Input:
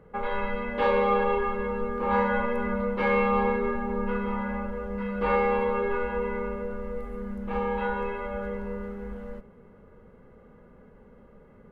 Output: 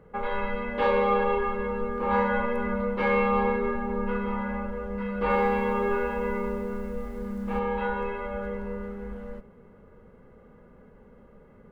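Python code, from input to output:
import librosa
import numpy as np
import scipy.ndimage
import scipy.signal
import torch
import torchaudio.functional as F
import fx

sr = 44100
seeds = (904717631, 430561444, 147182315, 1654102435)

y = fx.echo_crushed(x, sr, ms=124, feedback_pct=35, bits=9, wet_db=-7.5, at=(5.18, 7.59))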